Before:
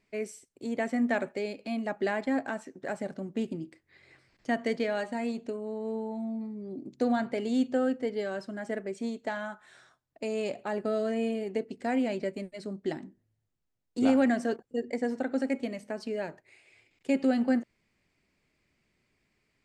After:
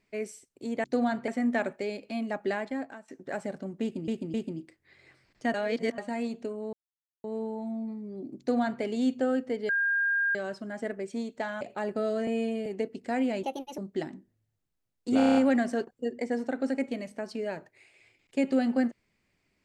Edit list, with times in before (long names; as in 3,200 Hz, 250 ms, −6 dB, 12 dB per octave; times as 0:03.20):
0:02.01–0:02.64: fade out, to −19 dB
0:03.38–0:03.64: repeat, 3 plays
0:04.58–0:05.02: reverse
0:05.77: splice in silence 0.51 s
0:06.92–0:07.36: duplicate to 0:00.84
0:08.22: insert tone 1,610 Hz −23.5 dBFS 0.66 s
0:09.48–0:10.50: remove
0:11.16–0:11.42: time-stretch 1.5×
0:12.19–0:12.68: play speed 139%
0:14.07: stutter 0.03 s, 7 plays